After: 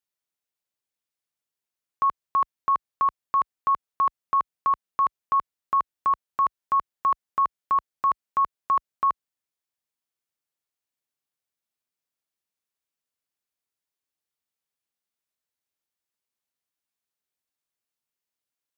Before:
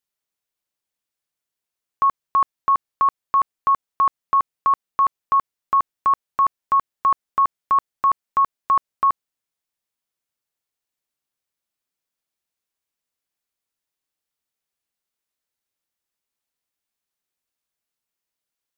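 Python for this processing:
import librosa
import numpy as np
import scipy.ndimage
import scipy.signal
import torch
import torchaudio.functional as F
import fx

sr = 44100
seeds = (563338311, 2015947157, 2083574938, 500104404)

y = scipy.signal.sosfilt(scipy.signal.butter(2, 45.0, 'highpass', fs=sr, output='sos'), x)
y = F.gain(torch.from_numpy(y), -4.5).numpy()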